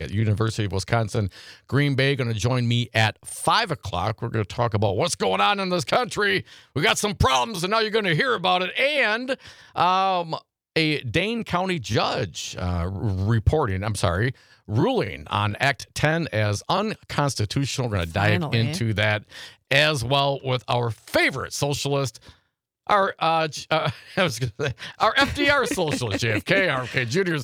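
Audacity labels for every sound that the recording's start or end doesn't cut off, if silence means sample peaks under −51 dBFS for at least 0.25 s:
10.760000	22.360000	sound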